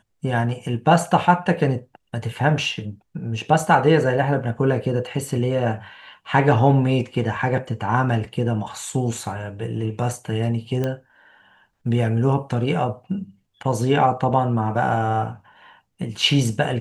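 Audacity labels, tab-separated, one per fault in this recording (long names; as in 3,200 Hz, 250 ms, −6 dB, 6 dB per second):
10.840000	10.840000	click −13 dBFS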